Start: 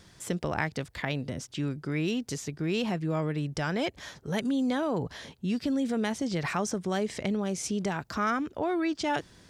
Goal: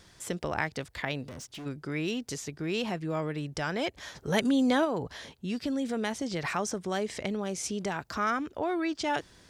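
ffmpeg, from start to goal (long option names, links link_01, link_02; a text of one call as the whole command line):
ffmpeg -i in.wav -filter_complex "[0:a]equalizer=frequency=160:width_type=o:width=1.8:gain=-5,asplit=3[link_01][link_02][link_03];[link_01]afade=type=out:start_time=1.23:duration=0.02[link_04];[link_02]asoftclip=type=hard:threshold=-39.5dB,afade=type=in:start_time=1.23:duration=0.02,afade=type=out:start_time=1.65:duration=0.02[link_05];[link_03]afade=type=in:start_time=1.65:duration=0.02[link_06];[link_04][link_05][link_06]amix=inputs=3:normalize=0,asplit=3[link_07][link_08][link_09];[link_07]afade=type=out:start_time=4.14:duration=0.02[link_10];[link_08]acontrast=44,afade=type=in:start_time=4.14:duration=0.02,afade=type=out:start_time=4.84:duration=0.02[link_11];[link_09]afade=type=in:start_time=4.84:duration=0.02[link_12];[link_10][link_11][link_12]amix=inputs=3:normalize=0" out.wav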